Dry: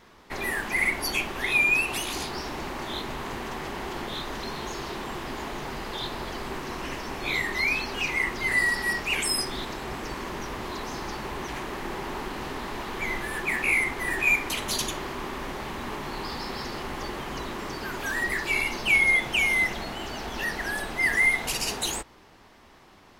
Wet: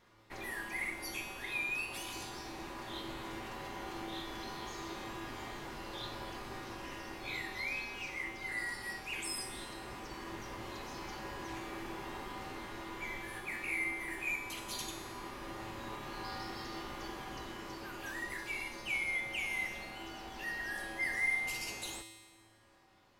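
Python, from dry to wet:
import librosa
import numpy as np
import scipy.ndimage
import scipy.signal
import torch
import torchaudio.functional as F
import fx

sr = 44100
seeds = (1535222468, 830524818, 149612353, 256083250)

p1 = fx.rider(x, sr, range_db=5, speed_s=2.0)
p2 = x + (p1 * librosa.db_to_amplitude(2.0))
p3 = fx.comb_fb(p2, sr, f0_hz=110.0, decay_s=1.4, harmonics='odd', damping=0.0, mix_pct=90)
y = p3 * librosa.db_to_amplitude(-3.0)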